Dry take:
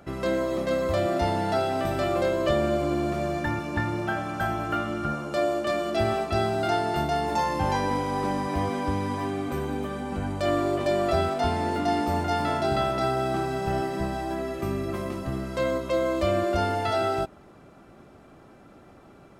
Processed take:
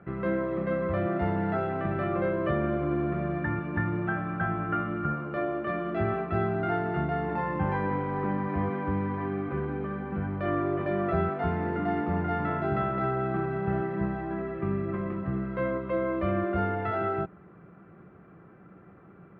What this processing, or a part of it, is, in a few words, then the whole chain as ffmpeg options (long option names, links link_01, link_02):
bass cabinet: -af "highpass=81,equalizer=frequency=180:width_type=q:width=4:gain=9,equalizer=frequency=250:width_type=q:width=4:gain=-9,equalizer=frequency=610:width_type=q:width=4:gain=-8,equalizer=frequency=860:width_type=q:width=4:gain=-7,lowpass=frequency=2000:width=0.5412,lowpass=frequency=2000:width=1.3066"